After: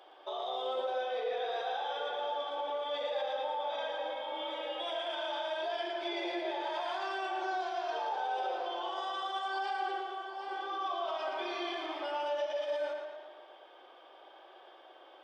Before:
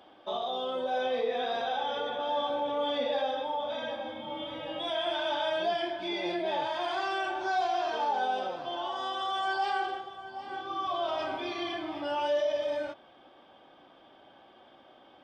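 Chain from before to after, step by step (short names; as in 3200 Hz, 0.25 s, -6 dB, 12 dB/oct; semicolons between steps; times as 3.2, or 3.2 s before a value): Chebyshev high-pass 370 Hz, order 4; limiter -30 dBFS, peak gain reduction 10 dB; on a send: tape echo 0.114 s, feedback 63%, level -3.5 dB, low-pass 5800 Hz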